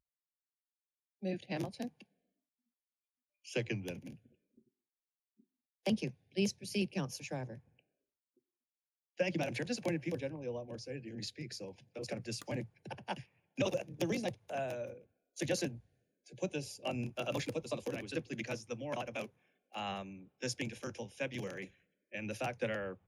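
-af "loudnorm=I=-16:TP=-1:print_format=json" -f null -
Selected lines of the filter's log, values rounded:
"input_i" : "-39.9",
"input_tp" : "-19.2",
"input_lra" : "3.5",
"input_thresh" : "-50.3",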